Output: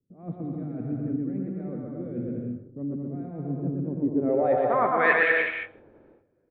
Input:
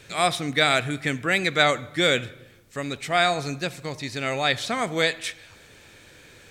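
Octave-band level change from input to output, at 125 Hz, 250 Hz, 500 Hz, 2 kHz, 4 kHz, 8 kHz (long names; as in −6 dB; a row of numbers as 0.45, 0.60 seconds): −0.5 dB, +2.5 dB, −1.0 dB, −2.5 dB, below −20 dB, below −40 dB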